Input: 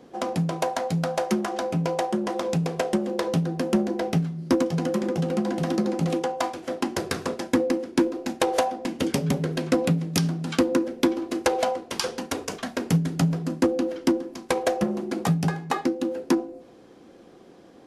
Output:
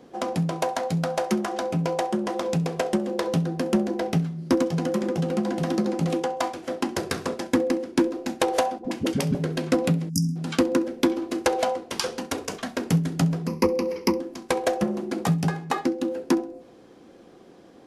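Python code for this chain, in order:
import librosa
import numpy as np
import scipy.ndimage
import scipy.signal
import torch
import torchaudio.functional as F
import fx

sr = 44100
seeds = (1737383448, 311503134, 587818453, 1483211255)

p1 = fx.dispersion(x, sr, late='highs', ms=63.0, hz=400.0, at=(8.78, 9.35))
p2 = p1 + fx.echo_thinned(p1, sr, ms=66, feedback_pct=30, hz=420.0, wet_db=-22.0, dry=0)
p3 = fx.spec_erase(p2, sr, start_s=10.09, length_s=0.27, low_hz=290.0, high_hz=4800.0)
y = fx.ripple_eq(p3, sr, per_octave=0.84, db=15, at=(13.47, 14.2))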